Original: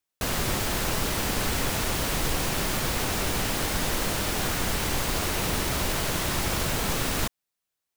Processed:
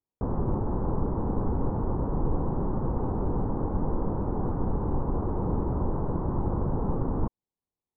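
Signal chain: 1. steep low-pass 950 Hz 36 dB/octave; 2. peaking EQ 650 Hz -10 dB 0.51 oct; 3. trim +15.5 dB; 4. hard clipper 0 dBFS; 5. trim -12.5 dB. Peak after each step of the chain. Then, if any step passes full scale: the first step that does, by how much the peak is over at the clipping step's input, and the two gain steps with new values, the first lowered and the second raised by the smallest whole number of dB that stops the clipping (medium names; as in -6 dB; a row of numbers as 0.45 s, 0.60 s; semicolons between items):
-16.5 dBFS, -17.5 dBFS, -2.0 dBFS, -2.0 dBFS, -14.5 dBFS; nothing clips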